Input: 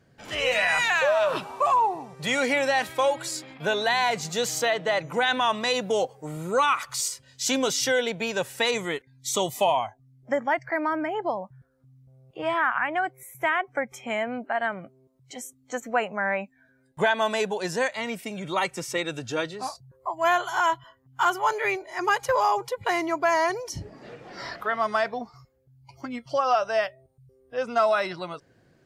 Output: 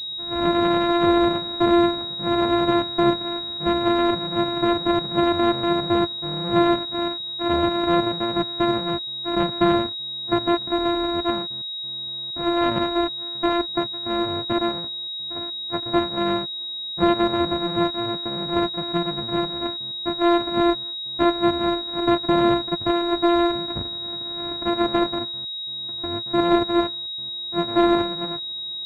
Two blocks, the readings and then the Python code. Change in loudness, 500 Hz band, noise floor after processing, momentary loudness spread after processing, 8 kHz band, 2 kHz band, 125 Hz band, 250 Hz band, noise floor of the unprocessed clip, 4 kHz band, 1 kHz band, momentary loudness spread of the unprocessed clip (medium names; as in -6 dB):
+3.5 dB, +3.5 dB, -31 dBFS, 9 LU, under -20 dB, -6.0 dB, +9.0 dB, +13.5 dB, -62 dBFS, +9.5 dB, +1.0 dB, 13 LU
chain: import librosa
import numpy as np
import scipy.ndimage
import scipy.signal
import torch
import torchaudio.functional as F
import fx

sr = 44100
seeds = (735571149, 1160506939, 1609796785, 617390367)

y = np.r_[np.sort(x[:len(x) // 128 * 128].reshape(-1, 128), axis=1).ravel(), x[len(x) // 128 * 128:]]
y = fx.air_absorb(y, sr, metres=240.0)
y = fx.pwm(y, sr, carrier_hz=3800.0)
y = y * librosa.db_to_amplitude(5.5)